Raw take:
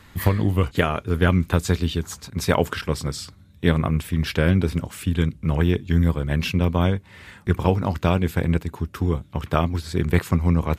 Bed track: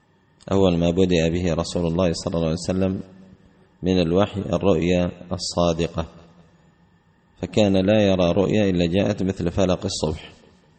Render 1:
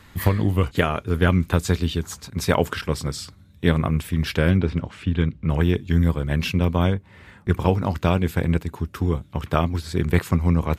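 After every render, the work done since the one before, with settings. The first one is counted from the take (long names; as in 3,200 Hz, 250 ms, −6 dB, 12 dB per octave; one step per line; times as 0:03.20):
0:04.57–0:05.50: low-pass filter 3,600 Hz
0:06.94–0:07.49: high-shelf EQ 2,100 Hz −9.5 dB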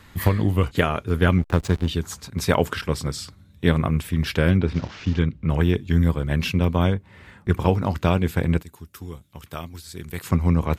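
0:01.38–0:01.88: slack as between gear wheels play −23.5 dBFS
0:04.74–0:05.19: linear delta modulator 32 kbit/s, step −34.5 dBFS
0:08.62–0:10.24: first-order pre-emphasis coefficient 0.8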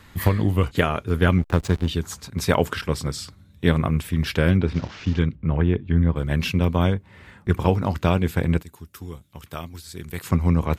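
0:05.35–0:06.16: high-frequency loss of the air 410 metres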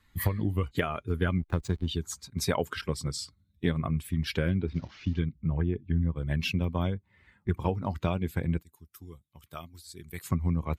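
spectral dynamics exaggerated over time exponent 1.5
downward compressor 2.5 to 1, threshold −26 dBFS, peak gain reduction 9 dB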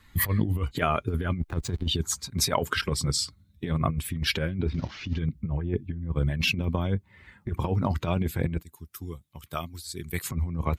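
in parallel at 0 dB: brickwall limiter −20 dBFS, peak gain reduction 10 dB
on the sum: compressor whose output falls as the input rises −25 dBFS, ratio −0.5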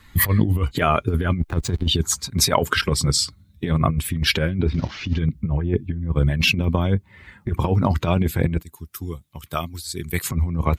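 level +7 dB
brickwall limiter −3 dBFS, peak gain reduction 2.5 dB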